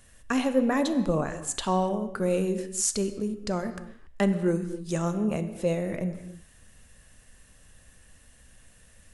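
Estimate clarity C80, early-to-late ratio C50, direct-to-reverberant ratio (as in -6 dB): 12.0 dB, 10.5 dB, 9.0 dB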